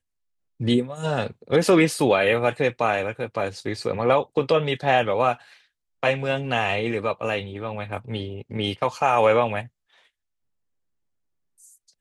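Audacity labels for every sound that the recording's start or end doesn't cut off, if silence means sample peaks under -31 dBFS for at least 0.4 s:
0.610000	5.340000	sound
6.030000	9.620000	sound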